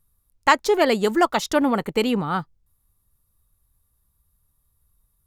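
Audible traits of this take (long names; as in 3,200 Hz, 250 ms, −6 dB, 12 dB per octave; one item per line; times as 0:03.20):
background noise floor −70 dBFS
spectral slope −3.0 dB per octave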